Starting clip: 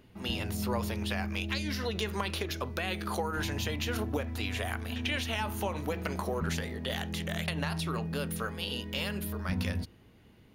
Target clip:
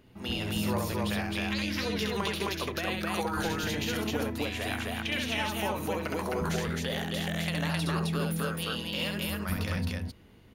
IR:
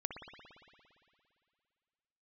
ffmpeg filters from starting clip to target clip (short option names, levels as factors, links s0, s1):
-af "aecho=1:1:67.06|262.4:0.708|0.891,volume=0.891"